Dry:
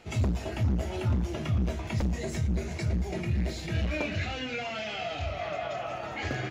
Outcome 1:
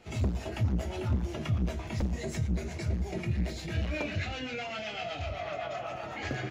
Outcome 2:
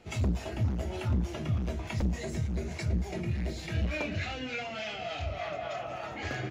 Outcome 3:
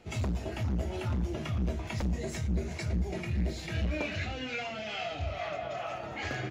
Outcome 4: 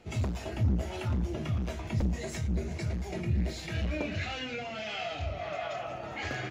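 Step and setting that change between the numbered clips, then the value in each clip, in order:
harmonic tremolo, rate: 7.9 Hz, 3.4 Hz, 2.3 Hz, 1.5 Hz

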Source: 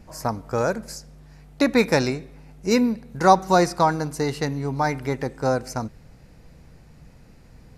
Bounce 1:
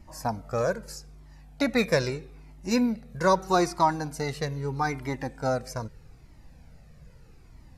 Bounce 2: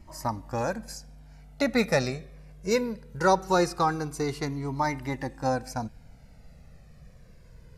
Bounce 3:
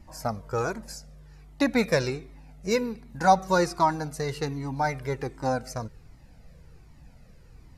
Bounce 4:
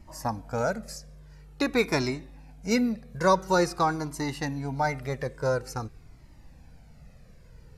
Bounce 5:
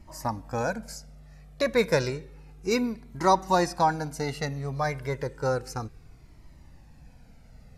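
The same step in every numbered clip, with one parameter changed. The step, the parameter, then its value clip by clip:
Shepard-style flanger, rate: 0.79 Hz, 0.21 Hz, 1.3 Hz, 0.48 Hz, 0.31 Hz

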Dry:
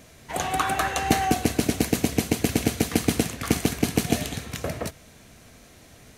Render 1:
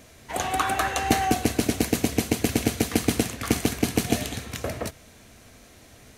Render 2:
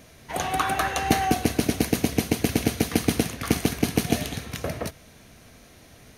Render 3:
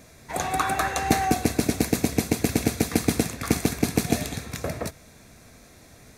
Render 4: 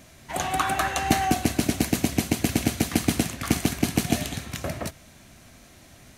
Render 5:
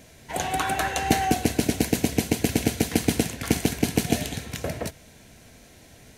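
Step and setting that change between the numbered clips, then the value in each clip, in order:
band-stop, frequency: 160 Hz, 7.6 kHz, 3 kHz, 460 Hz, 1.2 kHz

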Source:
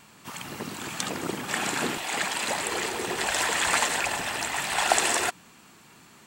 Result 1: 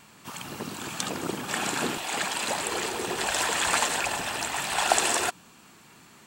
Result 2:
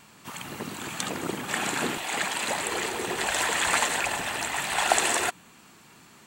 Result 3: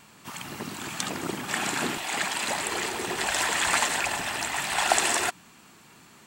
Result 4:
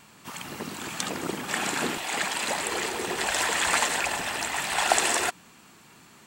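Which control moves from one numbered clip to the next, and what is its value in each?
dynamic bell, frequency: 2 kHz, 5.2 kHz, 490 Hz, 120 Hz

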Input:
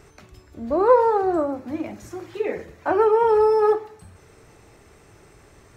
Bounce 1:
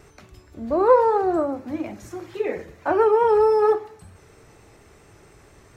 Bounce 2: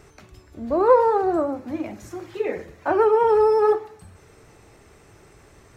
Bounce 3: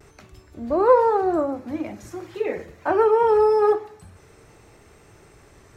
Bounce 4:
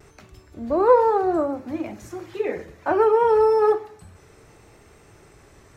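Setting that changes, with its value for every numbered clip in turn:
vibrato, rate: 4.4 Hz, 11 Hz, 0.46 Hz, 0.67 Hz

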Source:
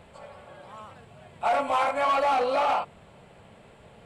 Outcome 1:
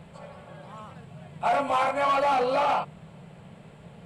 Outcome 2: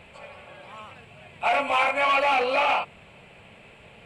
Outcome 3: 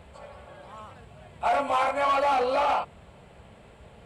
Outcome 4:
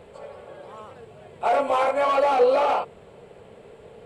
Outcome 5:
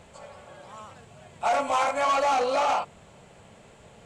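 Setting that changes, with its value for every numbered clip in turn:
peaking EQ, frequency: 160 Hz, 2.5 kHz, 61 Hz, 440 Hz, 6.5 kHz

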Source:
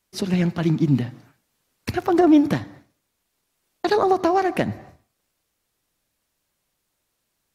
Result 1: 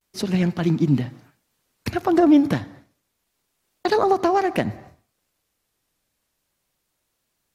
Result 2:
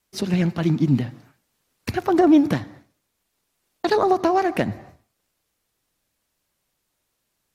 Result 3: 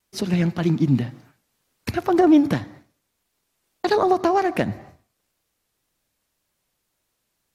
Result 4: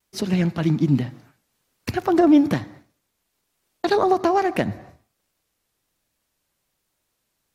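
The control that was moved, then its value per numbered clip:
vibrato, rate: 0.3 Hz, 8.2 Hz, 1.9 Hz, 1.2 Hz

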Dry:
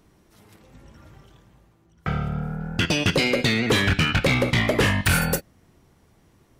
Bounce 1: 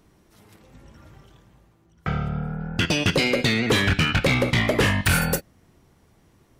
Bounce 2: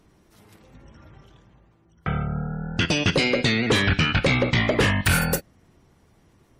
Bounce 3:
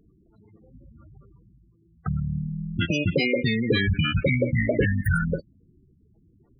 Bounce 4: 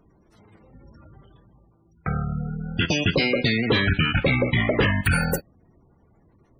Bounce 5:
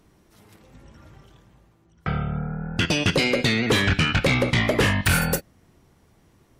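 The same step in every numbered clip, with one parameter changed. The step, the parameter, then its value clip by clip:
spectral gate, under each frame's peak: -60 dB, -35 dB, -10 dB, -20 dB, -45 dB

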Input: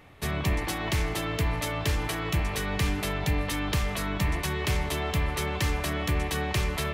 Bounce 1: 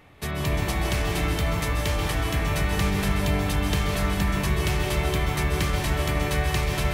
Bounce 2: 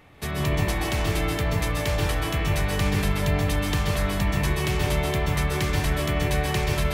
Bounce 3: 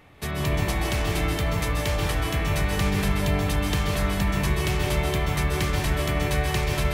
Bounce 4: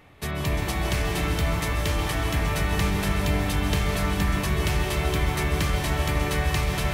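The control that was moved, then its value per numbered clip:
plate-style reverb, RT60: 2.5 s, 0.56 s, 1.2 s, 5.2 s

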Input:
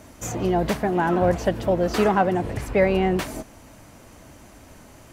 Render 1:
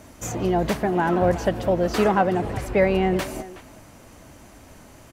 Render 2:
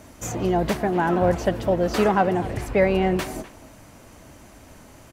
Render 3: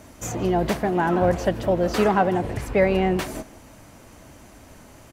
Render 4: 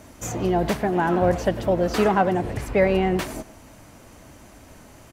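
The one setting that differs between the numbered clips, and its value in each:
speakerphone echo, time: 370 ms, 250 ms, 160 ms, 100 ms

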